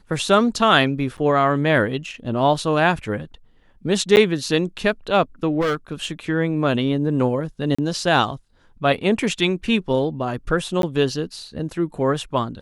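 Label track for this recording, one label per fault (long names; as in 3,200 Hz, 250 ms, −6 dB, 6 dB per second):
1.170000	1.180000	drop-out 8.5 ms
4.160000	4.170000	drop-out 9.8 ms
5.600000	6.110000	clipping −18 dBFS
7.750000	7.790000	drop-out 35 ms
10.820000	10.830000	drop-out 12 ms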